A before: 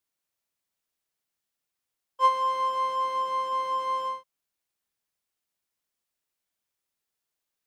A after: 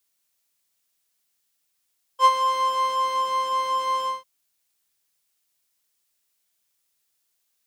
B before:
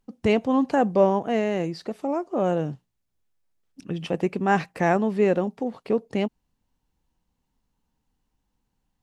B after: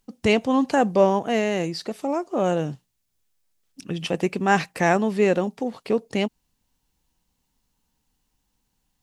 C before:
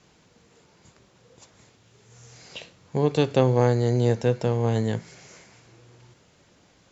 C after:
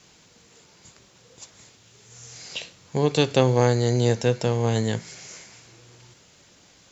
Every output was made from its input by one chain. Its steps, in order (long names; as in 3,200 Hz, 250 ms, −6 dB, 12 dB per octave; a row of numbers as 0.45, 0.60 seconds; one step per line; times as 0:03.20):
high-shelf EQ 2,500 Hz +10.5 dB
loudness normalisation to −23 LKFS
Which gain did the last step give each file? +2.5, +0.5, +0.5 decibels